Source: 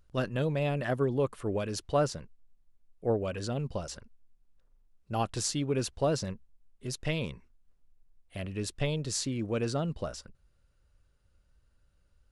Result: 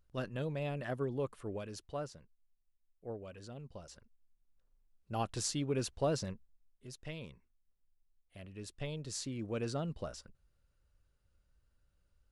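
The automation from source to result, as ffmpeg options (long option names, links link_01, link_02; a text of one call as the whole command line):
ffmpeg -i in.wav -af "volume=9.5dB,afade=type=out:start_time=1.31:duration=0.79:silence=0.446684,afade=type=in:start_time=3.7:duration=1.76:silence=0.298538,afade=type=out:start_time=6.25:duration=0.62:silence=0.375837,afade=type=in:start_time=8.5:duration=1.18:silence=0.446684" out.wav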